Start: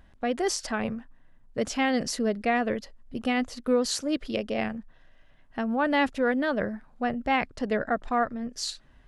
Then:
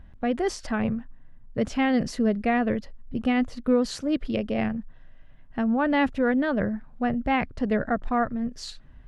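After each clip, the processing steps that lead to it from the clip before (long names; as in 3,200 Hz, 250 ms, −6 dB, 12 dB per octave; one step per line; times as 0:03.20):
bass and treble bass +9 dB, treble −9 dB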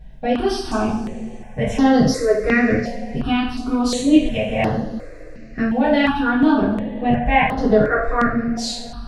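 coupled-rooms reverb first 0.59 s, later 4.1 s, from −22 dB, DRR −10 dB
step-sequenced phaser 2.8 Hz 330–8,000 Hz
level +2 dB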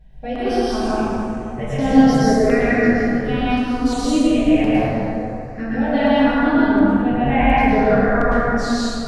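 dense smooth reverb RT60 2.6 s, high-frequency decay 0.45×, pre-delay 95 ms, DRR −7.5 dB
level −7.5 dB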